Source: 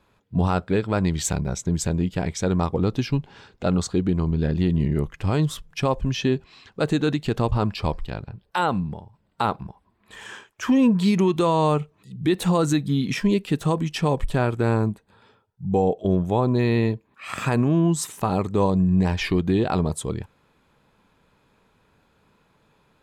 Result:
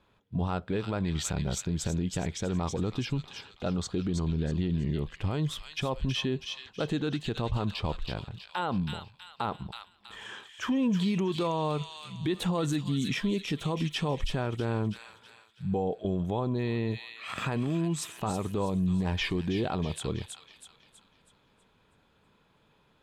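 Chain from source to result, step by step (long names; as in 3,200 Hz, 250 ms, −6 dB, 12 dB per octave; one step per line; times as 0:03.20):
high-shelf EQ 5,100 Hz −6.5 dB
delay with a high-pass on its return 323 ms, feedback 43%, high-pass 2,700 Hz, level −3 dB
brickwall limiter −17 dBFS, peak gain reduction 7 dB
parametric band 3,300 Hz +6 dB 0.42 octaves
level −4 dB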